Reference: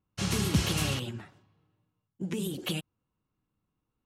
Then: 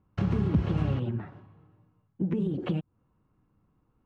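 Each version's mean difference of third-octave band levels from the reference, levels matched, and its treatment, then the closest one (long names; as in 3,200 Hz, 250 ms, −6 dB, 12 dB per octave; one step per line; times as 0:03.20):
10.5 dB: low-pass filter 1,300 Hz 12 dB per octave
downward compressor 2 to 1, threshold −42 dBFS, peak gain reduction 12 dB
low-shelf EQ 420 Hz +8 dB
one half of a high-frequency compander encoder only
level +5.5 dB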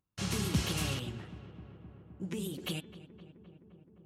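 1.5 dB: noise gate −59 dBFS, range −57 dB
hum removal 289.8 Hz, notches 14
upward compression, threshold −44 dBFS
feedback echo with a low-pass in the loop 259 ms, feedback 80%, low-pass 2,200 Hz, level −15.5 dB
level −4.5 dB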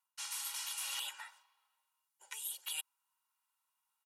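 18.0 dB: elliptic high-pass filter 800 Hz, stop band 70 dB
parametric band 11,000 Hz +12 dB 1.3 octaves
reversed playback
downward compressor 16 to 1, threshold −40 dBFS, peak gain reduction 17 dB
reversed playback
comb filter 2.1 ms, depth 63%
level +1 dB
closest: second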